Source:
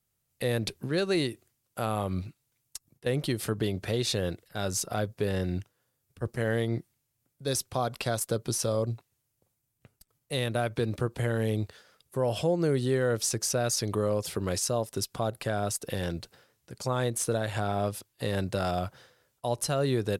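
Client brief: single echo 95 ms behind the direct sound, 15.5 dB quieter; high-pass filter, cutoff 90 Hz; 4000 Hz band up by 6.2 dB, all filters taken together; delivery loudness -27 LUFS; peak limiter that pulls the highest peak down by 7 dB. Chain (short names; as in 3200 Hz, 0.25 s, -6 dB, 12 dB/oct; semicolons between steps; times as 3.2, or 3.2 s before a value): HPF 90 Hz; bell 4000 Hz +7.5 dB; limiter -20 dBFS; echo 95 ms -15.5 dB; gain +5 dB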